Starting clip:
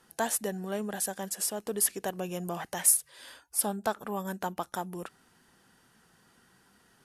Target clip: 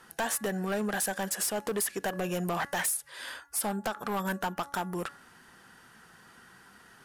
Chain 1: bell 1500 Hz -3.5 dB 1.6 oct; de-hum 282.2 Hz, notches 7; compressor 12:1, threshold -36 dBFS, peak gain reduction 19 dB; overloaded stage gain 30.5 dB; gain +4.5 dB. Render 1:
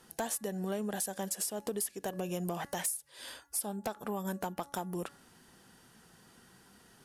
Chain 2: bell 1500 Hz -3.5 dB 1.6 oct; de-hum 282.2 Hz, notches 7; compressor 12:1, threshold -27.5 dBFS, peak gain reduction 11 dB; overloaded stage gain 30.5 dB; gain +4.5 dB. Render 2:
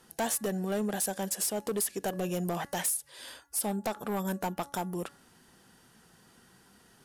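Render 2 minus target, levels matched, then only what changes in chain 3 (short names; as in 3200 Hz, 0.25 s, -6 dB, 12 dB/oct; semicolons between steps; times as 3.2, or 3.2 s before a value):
2000 Hz band -6.5 dB
change: bell 1500 Hz +7 dB 1.6 oct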